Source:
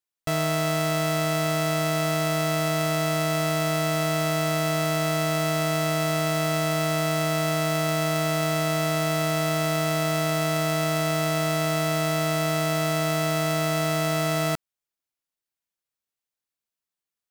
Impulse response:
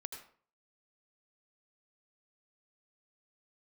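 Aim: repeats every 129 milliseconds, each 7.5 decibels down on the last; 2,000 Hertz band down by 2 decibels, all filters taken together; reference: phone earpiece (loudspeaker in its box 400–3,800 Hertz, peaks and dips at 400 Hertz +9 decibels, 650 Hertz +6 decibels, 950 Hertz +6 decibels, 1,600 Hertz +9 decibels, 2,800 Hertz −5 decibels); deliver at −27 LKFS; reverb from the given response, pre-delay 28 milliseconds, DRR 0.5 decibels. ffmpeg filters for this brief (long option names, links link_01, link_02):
-filter_complex "[0:a]equalizer=frequency=2000:width_type=o:gain=-5.5,aecho=1:1:129|258|387|516|645:0.422|0.177|0.0744|0.0312|0.0131,asplit=2[link_01][link_02];[1:a]atrim=start_sample=2205,adelay=28[link_03];[link_02][link_03]afir=irnorm=-1:irlink=0,volume=2dB[link_04];[link_01][link_04]amix=inputs=2:normalize=0,highpass=400,equalizer=frequency=400:width_type=q:width=4:gain=9,equalizer=frequency=650:width_type=q:width=4:gain=6,equalizer=frequency=950:width_type=q:width=4:gain=6,equalizer=frequency=1600:width_type=q:width=4:gain=9,equalizer=frequency=2800:width_type=q:width=4:gain=-5,lowpass=frequency=3800:width=0.5412,lowpass=frequency=3800:width=1.3066,volume=-5dB"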